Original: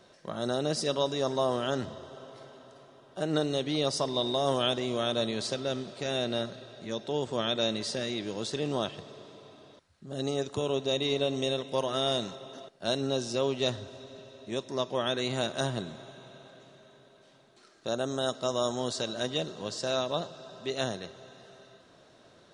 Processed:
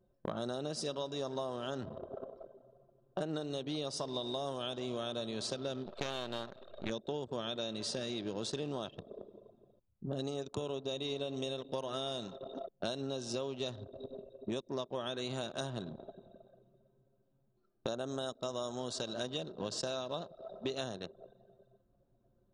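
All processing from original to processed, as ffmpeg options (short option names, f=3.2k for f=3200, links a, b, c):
-filter_complex "[0:a]asettb=1/sr,asplit=3[a][b][c];[a]atrim=end=5.864[d];[b]atrim=start=5.86:end=6.9,asetpts=PTS-STARTPTS,afade=t=in:d=0.004:c=qsin,afade=t=out:st=1.036:d=0.004:c=qsin,aeval=exprs='if(lt(val(0),0),0.251*val(0),val(0))':c=same,equalizer=f=1.7k:w=0.42:g=8.5[e];[c]atrim=start=6.896[f];[d][e]acrossfade=d=0.004:c1=hsin:c2=qsin[g];[g][f]acrossfade=d=0.004:c1=qsin:c2=hsin,anlmdn=0.398,equalizer=f=2k:t=o:w=0.36:g=-7.5,acompressor=threshold=-43dB:ratio=12,volume=8.5dB"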